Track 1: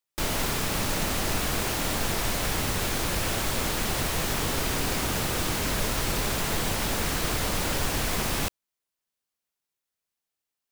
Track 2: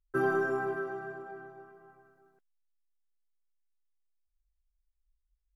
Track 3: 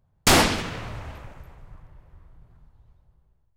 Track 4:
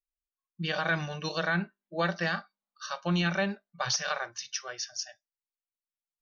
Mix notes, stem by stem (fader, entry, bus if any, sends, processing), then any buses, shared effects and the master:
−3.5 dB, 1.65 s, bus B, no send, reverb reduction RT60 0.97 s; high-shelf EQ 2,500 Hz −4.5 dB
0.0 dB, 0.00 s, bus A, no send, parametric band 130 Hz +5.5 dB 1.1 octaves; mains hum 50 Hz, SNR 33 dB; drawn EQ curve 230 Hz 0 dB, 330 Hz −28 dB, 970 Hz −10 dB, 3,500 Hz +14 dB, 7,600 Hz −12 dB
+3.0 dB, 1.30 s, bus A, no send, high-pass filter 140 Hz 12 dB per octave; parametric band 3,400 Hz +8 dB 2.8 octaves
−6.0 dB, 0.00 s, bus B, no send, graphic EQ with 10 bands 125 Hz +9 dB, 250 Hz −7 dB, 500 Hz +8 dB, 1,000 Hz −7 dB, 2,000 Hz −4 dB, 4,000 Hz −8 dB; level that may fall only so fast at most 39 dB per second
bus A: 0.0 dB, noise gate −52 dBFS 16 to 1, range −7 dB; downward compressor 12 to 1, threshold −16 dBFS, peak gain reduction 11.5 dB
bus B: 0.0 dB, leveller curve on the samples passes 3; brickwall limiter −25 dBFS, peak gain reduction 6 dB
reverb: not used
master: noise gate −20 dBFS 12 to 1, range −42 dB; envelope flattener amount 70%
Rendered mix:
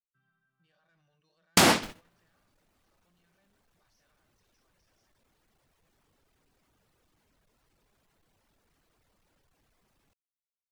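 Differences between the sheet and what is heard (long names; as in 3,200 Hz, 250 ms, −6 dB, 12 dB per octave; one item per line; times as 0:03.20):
stem 3: missing parametric band 3,400 Hz +8 dB 2.8 octaves
stem 4: missing graphic EQ with 10 bands 125 Hz +9 dB, 250 Hz −7 dB, 500 Hz +8 dB, 1,000 Hz −7 dB, 2,000 Hz −4 dB, 4,000 Hz −8 dB
master: missing envelope flattener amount 70%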